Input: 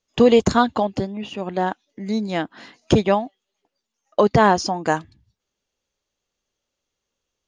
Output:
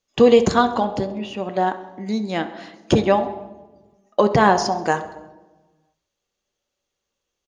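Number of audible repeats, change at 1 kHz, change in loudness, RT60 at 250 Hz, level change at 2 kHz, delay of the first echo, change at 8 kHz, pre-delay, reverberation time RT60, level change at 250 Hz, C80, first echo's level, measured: 4, +1.0 dB, +0.5 dB, 1.5 s, +1.0 dB, 66 ms, 0.0 dB, 3 ms, 1.1 s, -0.5 dB, 14.0 dB, -18.0 dB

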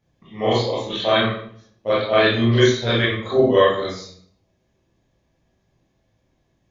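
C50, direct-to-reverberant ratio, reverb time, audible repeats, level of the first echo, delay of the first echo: 3.0 dB, -6.5 dB, 0.60 s, no echo, no echo, no echo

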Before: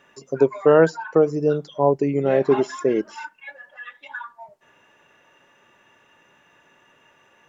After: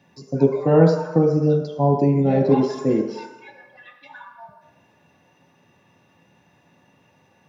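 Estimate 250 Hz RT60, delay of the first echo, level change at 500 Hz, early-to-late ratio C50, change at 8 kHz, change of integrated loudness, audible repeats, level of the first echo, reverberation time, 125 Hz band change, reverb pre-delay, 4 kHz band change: 0.80 s, no echo, -1.5 dB, 6.0 dB, no reading, +1.0 dB, no echo, no echo, 1.0 s, +9.5 dB, 3 ms, 0.0 dB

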